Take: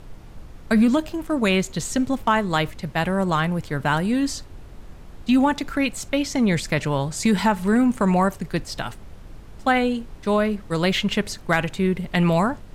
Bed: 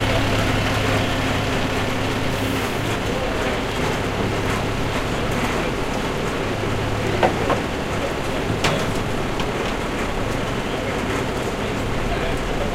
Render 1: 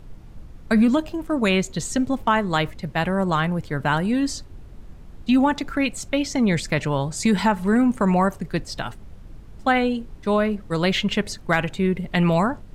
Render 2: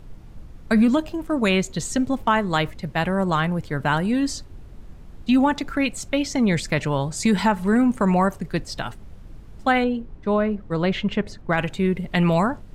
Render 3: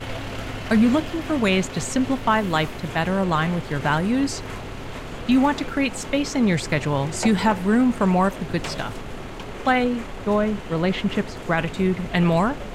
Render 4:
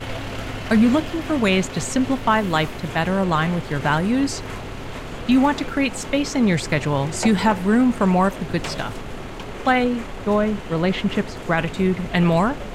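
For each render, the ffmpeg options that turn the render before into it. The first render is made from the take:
-af "afftdn=nr=6:nf=-42"
-filter_complex "[0:a]asettb=1/sr,asplit=3[s0][s1][s2];[s0]atrim=end=9.844[s3];[s1]atrim=start=9.84:end=11.58,asetpts=PTS-STARTPTS,afade=t=in:d=0.004:c=qsin,afade=t=out:st=1.736:d=0.004:c=qsin,lowpass=f=1500:p=1[s4];[s2]atrim=start=11.576[s5];[s3][s4]acrossfade=d=0.004:c1=hsin:c2=qsin[s6];[s6][s5]acrossfade=d=0.004:c1=qsin:c2=hsin"
-filter_complex "[1:a]volume=0.251[s0];[0:a][s0]amix=inputs=2:normalize=0"
-af "volume=1.19"

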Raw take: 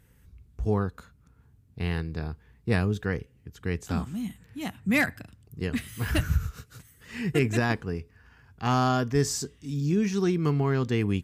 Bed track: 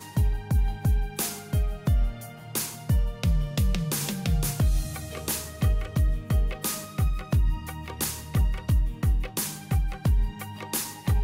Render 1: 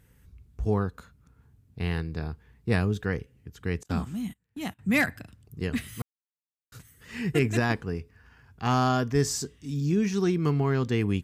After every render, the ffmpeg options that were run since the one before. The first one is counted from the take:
-filter_complex "[0:a]asettb=1/sr,asplit=3[s0][s1][s2];[s0]atrim=end=3.834[s3];[s1]atrim=start=3.83:end=4.79,asetpts=PTS-STARTPTS,afade=t=in:d=0.004:c=qsin,afade=t=out:st=0.956:d=0.004:c=qsin,agate=range=0.0562:threshold=0.00708:ratio=16:release=100:detection=peak[s4];[s2]atrim=start=4.786[s5];[s3][s4]acrossfade=d=0.004:c1=hsin:c2=qsin[s6];[s6][s5]acrossfade=d=0.004:c1=qsin:c2=hsin,asplit=3[s7][s8][s9];[s7]atrim=end=6.02,asetpts=PTS-STARTPTS,afade=t=out:st=6.016:d=0.004:c=hsin[s10];[s8]atrim=start=6.02:end=6.72,asetpts=PTS-STARTPTS,volume=0[s11];[s9]atrim=start=6.72,asetpts=PTS-STARTPTS,afade=t=in:d=0.004:c=hsin[s12];[s10][s11][s12]concat=n=3:v=0:a=1"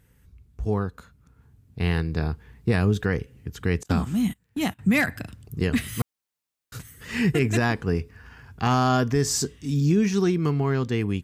-af "dynaudnorm=f=440:g=9:m=3.55,alimiter=limit=0.237:level=0:latency=1:release=237"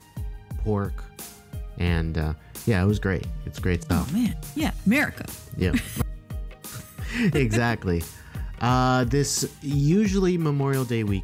-filter_complex "[1:a]volume=0.316[s0];[0:a][s0]amix=inputs=2:normalize=0"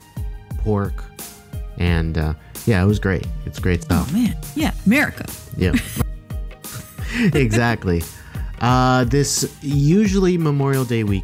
-af "volume=1.88"

